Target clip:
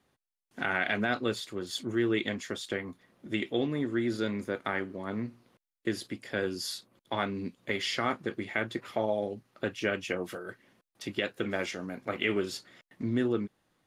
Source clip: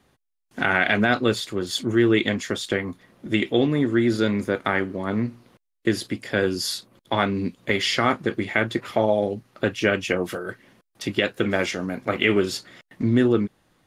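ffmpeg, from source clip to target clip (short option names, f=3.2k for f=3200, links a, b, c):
-af "lowshelf=f=110:g=-5.5,volume=-9dB"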